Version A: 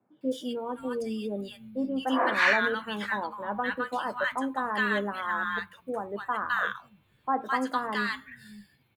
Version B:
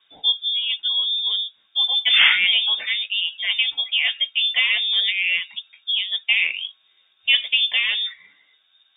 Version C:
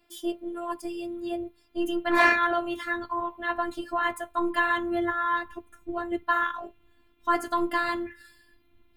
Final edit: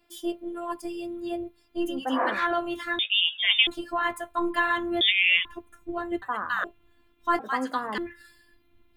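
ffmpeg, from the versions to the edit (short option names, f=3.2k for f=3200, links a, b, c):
-filter_complex "[0:a]asplit=3[a][b][c];[1:a]asplit=2[d][e];[2:a]asplit=6[f][g][h][i][j][k];[f]atrim=end=2.03[l];[a]atrim=start=1.87:end=2.47[m];[g]atrim=start=2.31:end=2.992[n];[d]atrim=start=2.988:end=3.672[o];[h]atrim=start=3.668:end=5.012[p];[e]atrim=start=5.008:end=5.452[q];[i]atrim=start=5.448:end=6.222[r];[b]atrim=start=6.218:end=6.642[s];[j]atrim=start=6.638:end=7.392[t];[c]atrim=start=7.388:end=7.982[u];[k]atrim=start=7.978[v];[l][m]acrossfade=d=0.16:c1=tri:c2=tri[w];[w][n]acrossfade=d=0.16:c1=tri:c2=tri[x];[x][o]acrossfade=d=0.004:c1=hsin:c2=hsin[y];[y][p]acrossfade=d=0.004:c1=hsin:c2=hsin[z];[z][q]acrossfade=d=0.004:c1=hsin:c2=hsin[aa];[aa][r]acrossfade=d=0.004:c1=hsin:c2=hsin[ab];[ab][s]acrossfade=d=0.004:c1=hsin:c2=hsin[ac];[ac][t]acrossfade=d=0.004:c1=hsin:c2=hsin[ad];[ad][u]acrossfade=d=0.004:c1=hsin:c2=hsin[ae];[ae][v]acrossfade=d=0.004:c1=hsin:c2=hsin"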